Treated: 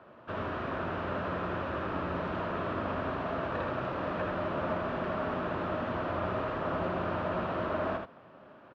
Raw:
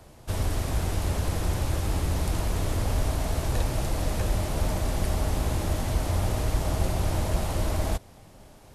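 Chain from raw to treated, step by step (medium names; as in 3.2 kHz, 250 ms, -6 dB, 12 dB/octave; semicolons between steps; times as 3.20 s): cabinet simulation 300–2300 Hz, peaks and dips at 310 Hz -4 dB, 460 Hz -6 dB, 800 Hz -9 dB, 1.3 kHz +4 dB, 2.1 kHz -10 dB; on a send: delay 79 ms -5 dB; on the sum: trim +4 dB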